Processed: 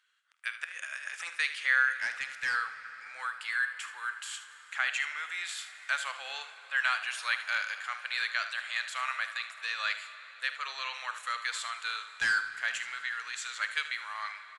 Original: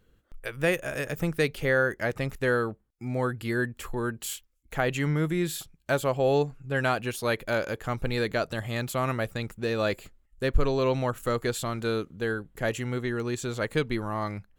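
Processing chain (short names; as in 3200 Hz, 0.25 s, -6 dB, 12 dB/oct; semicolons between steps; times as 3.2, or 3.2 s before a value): de-esser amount 65%; HPF 1400 Hz 24 dB/oct; high shelf 5400 Hz -7 dB; 0.64–1.3 negative-ratio compressor -46 dBFS, ratio -1; 1.94–2.55 hard clip -30 dBFS, distortion -20 dB; 12.14–12.55 sample leveller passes 3; early reflections 49 ms -16 dB, 76 ms -13 dB; reverb RT60 5.6 s, pre-delay 26 ms, DRR 11 dB; gain +4 dB; Vorbis 64 kbps 22050 Hz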